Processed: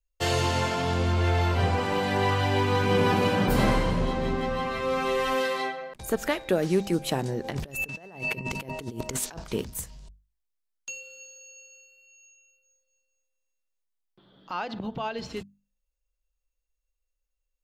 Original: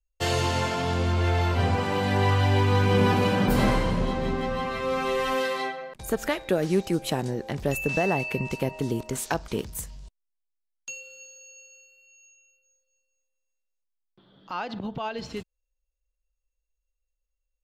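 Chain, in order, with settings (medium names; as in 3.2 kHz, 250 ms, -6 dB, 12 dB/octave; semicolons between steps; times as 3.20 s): hum notches 50/100/150/200/250 Hz; 7.44–9.44 s: compressor with a negative ratio -33 dBFS, ratio -0.5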